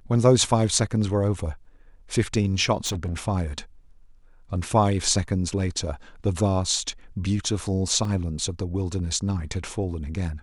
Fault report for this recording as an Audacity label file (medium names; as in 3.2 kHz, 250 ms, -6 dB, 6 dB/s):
2.850000	3.200000	clipped -24 dBFS
8.050000	8.050000	dropout 2.5 ms